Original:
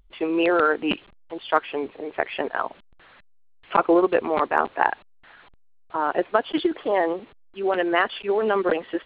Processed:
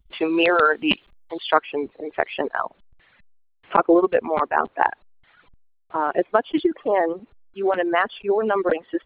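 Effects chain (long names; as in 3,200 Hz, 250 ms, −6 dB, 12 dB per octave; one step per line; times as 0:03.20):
reverb reduction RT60 1.2 s
noise gate −58 dBFS, range −20 dB
high-shelf EQ 2,900 Hz +8 dB, from 0:01.54 −4.5 dB, from 0:02.59 −11 dB
level +3 dB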